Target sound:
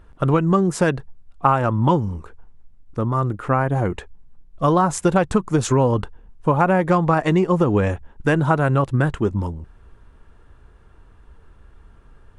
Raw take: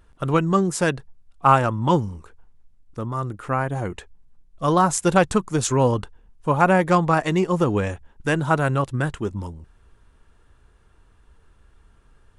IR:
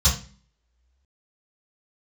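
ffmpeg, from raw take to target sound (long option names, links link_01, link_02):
-af "highshelf=frequency=2900:gain=-10.5,acompressor=threshold=-20dB:ratio=6,volume=7dB"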